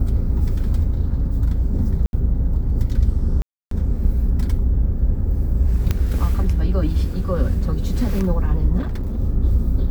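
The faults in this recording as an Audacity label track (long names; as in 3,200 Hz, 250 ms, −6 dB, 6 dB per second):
2.060000	2.130000	drop-out 71 ms
3.420000	3.710000	drop-out 293 ms
5.910000	5.910000	click −7 dBFS
8.780000	9.200000	clipping −20 dBFS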